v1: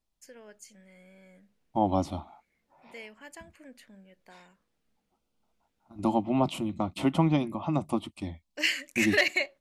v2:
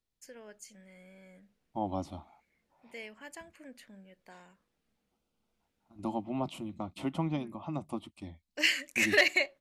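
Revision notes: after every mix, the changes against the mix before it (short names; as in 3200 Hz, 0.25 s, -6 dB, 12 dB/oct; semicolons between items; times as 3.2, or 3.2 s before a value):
second voice -8.5 dB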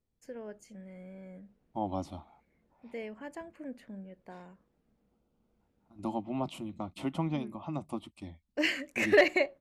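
first voice: add tilt shelf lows +9.5 dB, about 1500 Hz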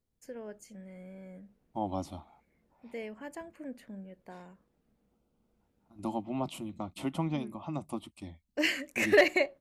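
master: add high shelf 8300 Hz +10 dB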